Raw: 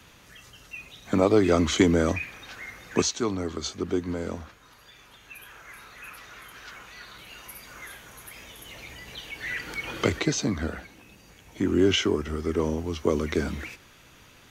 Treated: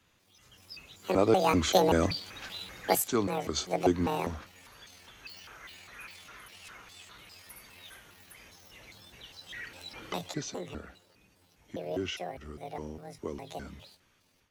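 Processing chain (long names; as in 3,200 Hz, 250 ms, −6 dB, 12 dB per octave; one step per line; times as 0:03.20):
pitch shifter gated in a rhythm +10.5 semitones, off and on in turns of 197 ms
source passing by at 0:03.53, 11 m/s, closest 16 metres
automatic gain control gain up to 10 dB
level −7.5 dB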